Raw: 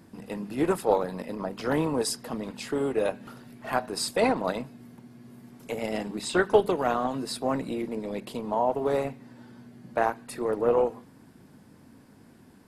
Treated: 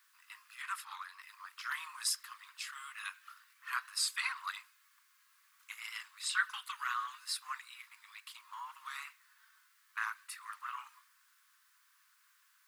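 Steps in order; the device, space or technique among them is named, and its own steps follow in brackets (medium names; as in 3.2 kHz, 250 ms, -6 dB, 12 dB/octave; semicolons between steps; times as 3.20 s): plain cassette with noise reduction switched in (tape noise reduction on one side only decoder only; wow and flutter; white noise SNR 40 dB); 0.62–1.22 s: treble shelf 6.4 kHz -7 dB; steep high-pass 1.1 kHz 72 dB/octave; trim -2.5 dB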